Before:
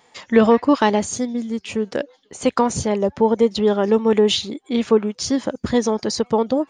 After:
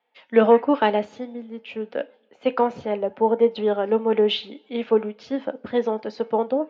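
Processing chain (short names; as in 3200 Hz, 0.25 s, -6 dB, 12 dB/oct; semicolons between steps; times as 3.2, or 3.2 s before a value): speaker cabinet 330–2800 Hz, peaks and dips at 350 Hz -6 dB, 1100 Hz -8 dB, 1900 Hz -6 dB; reverb, pre-delay 3 ms, DRR 12 dB; three-band expander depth 40%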